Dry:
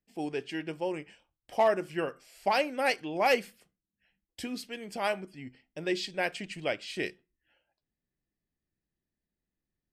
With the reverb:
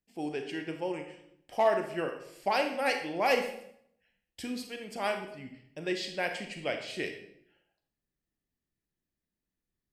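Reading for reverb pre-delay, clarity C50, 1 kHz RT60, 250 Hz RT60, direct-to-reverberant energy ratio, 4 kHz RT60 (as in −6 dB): 28 ms, 7.5 dB, 0.65 s, 0.85 s, 5.0 dB, 0.55 s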